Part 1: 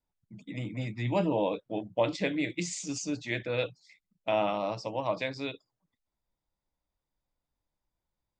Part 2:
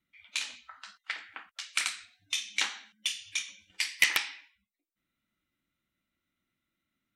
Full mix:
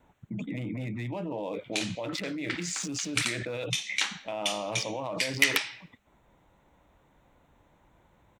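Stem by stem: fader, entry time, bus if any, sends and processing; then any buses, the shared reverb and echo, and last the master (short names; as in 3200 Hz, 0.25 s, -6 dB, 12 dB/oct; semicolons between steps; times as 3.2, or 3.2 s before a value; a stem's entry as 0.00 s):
-11.5 dB, 0.00 s, no send, Wiener smoothing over 9 samples; HPF 100 Hz 6 dB/oct; fast leveller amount 100%
+1.0 dB, 1.40 s, no send, dry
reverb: off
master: dry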